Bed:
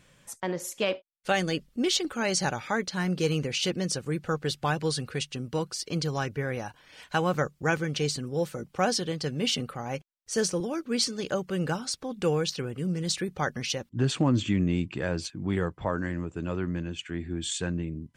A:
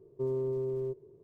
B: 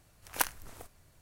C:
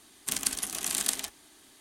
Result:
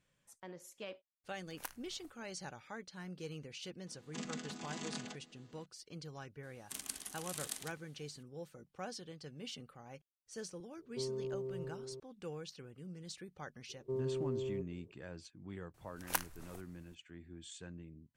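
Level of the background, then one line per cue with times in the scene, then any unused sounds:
bed −19 dB
0:01.24: mix in B −16 dB
0:03.86: mix in C −9 dB + channel vocoder with a chord as carrier major triad, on E3
0:06.43: mix in C −14 dB
0:10.77: mix in A −8 dB + single-tap delay 581 ms −7.5 dB
0:13.69: mix in A −5.5 dB
0:15.74: mix in B −5.5 dB

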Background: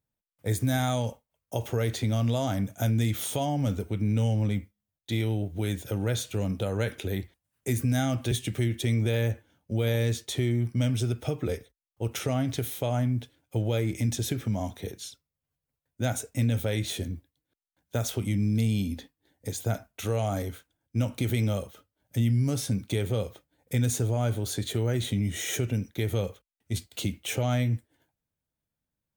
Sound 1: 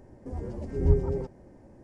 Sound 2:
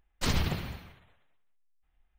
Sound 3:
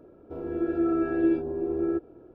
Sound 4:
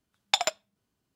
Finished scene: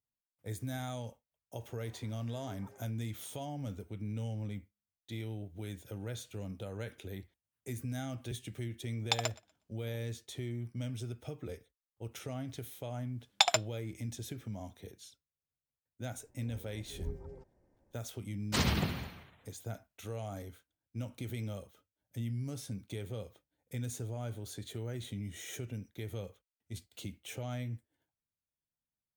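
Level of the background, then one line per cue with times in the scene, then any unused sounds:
background −13 dB
0:01.59: mix in 1 −12.5 dB + high-pass with resonance 1,100 Hz, resonance Q 1.6
0:08.78: mix in 4 −7.5 dB + feedback echo with a high-pass in the loop 121 ms, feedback 21%, high-pass 230 Hz, level −23 dB
0:13.07: mix in 4 −1 dB
0:16.17: mix in 1 −16.5 dB + parametric band 230 Hz −5.5 dB 1.8 octaves
0:18.31: mix in 2 + high-pass filter 77 Hz
not used: 3

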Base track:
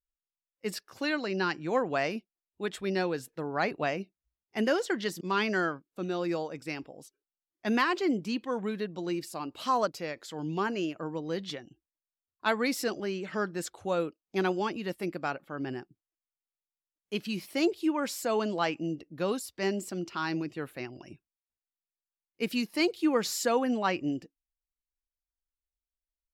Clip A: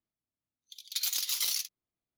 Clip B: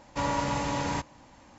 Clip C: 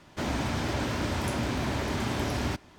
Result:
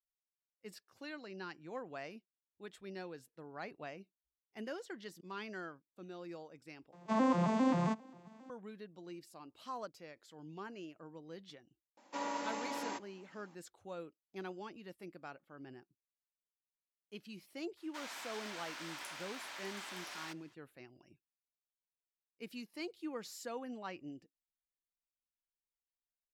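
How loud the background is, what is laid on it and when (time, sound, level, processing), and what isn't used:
base track −16.5 dB
0:06.92: overwrite with B −0.5 dB + vocoder with an arpeggio as carrier major triad, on F3, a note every 134 ms
0:11.97: mix in B −10 dB + Butterworth high-pass 230 Hz
0:17.77: mix in C −9.5 dB + high-pass filter 1,200 Hz
not used: A

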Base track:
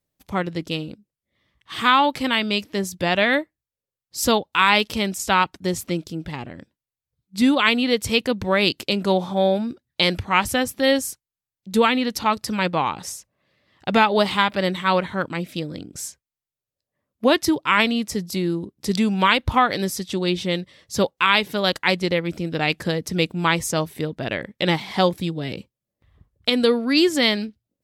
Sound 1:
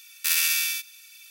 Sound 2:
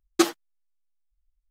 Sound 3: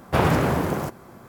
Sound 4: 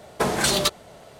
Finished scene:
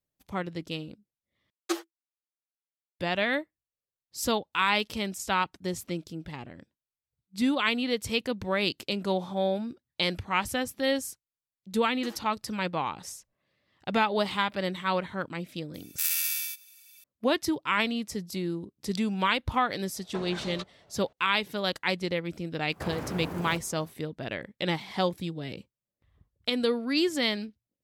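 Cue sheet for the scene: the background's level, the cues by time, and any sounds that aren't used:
base track −8.5 dB
0:01.50: overwrite with 2 −9 dB + Chebyshev high-pass filter 330 Hz, order 8
0:11.84: mix in 2 −11.5 dB + downward compressor, threshold −26 dBFS
0:15.74: mix in 1 −11.5 dB + parametric band 14,000 Hz +9.5 dB 1.3 octaves
0:19.94: mix in 4 −16 dB + low-pass filter 4,100 Hz
0:22.68: mix in 3 −10 dB, fades 0.10 s + downward compressor, threshold −22 dBFS

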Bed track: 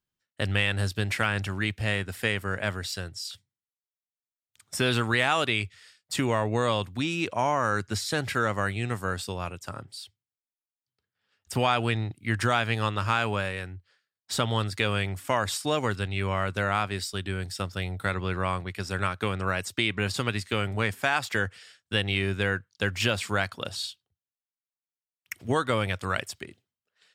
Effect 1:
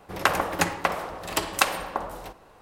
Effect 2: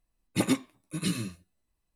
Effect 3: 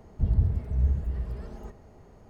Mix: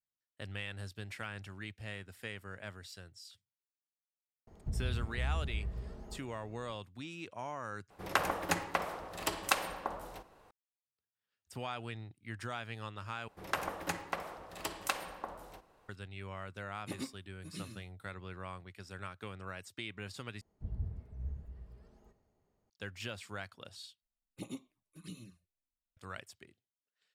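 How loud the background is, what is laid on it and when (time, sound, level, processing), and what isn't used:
bed track −16.5 dB
0:04.47: mix in 3 −7 dB + brickwall limiter −21 dBFS
0:07.90: overwrite with 1 −8.5 dB
0:13.28: overwrite with 1 −13 dB
0:16.51: mix in 2 −16 dB
0:20.41: overwrite with 3 −17 dB + multiband upward and downward expander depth 40%
0:24.02: overwrite with 2 −17.5 dB + flanger swept by the level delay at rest 4.5 ms, full sweep at −27 dBFS

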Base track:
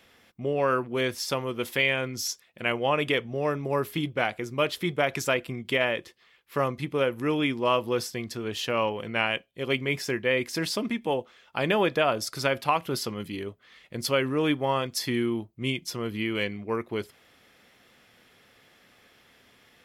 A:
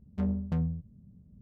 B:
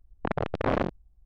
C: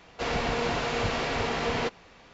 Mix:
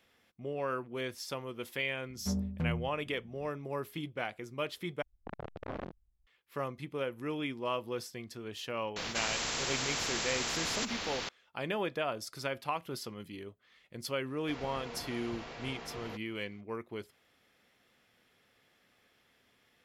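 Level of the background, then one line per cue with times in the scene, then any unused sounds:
base track −10.5 dB
0:02.08: mix in A −4 dB
0:05.02: overwrite with B −15 dB
0:08.96: mix in C −7.5 dB + every bin compressed towards the loudest bin 10 to 1
0:14.28: mix in C −16.5 dB

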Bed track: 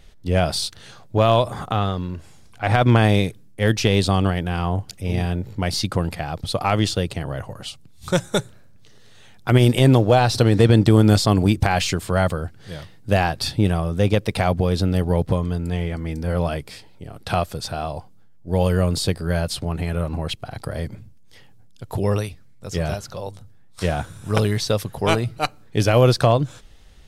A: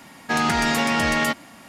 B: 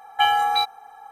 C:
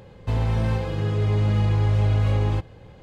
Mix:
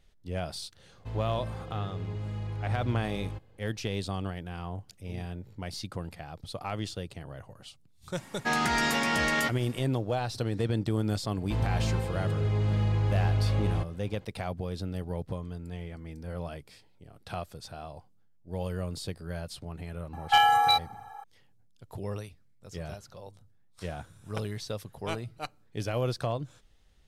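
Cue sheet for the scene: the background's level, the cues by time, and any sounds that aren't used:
bed track −15 dB
0:00.78: mix in C −15 dB
0:08.16: mix in A −6 dB + double-tracking delay 15 ms −12 dB
0:11.23: mix in C −6 dB
0:20.13: mix in B −1.5 dB + gain into a clipping stage and back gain 12.5 dB

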